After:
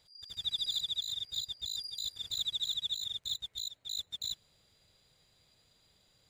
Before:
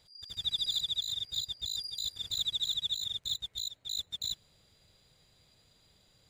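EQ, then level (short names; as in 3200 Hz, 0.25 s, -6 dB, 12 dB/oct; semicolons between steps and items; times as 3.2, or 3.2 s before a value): low shelf 360 Hz -3.5 dB; -2.0 dB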